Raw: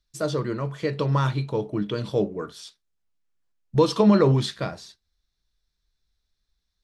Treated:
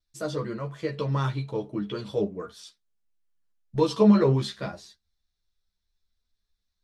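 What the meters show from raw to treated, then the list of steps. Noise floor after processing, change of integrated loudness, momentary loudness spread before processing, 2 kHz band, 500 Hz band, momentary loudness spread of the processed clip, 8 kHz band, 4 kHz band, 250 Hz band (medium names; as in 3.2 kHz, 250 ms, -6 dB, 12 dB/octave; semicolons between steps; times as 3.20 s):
-80 dBFS, -2.5 dB, 15 LU, -4.5 dB, -3.0 dB, 18 LU, -4.5 dB, -4.5 dB, -1.0 dB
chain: chorus voices 4, 0.3 Hz, delay 12 ms, depth 3.1 ms; vibrato 0.47 Hz 18 cents; trim -1.5 dB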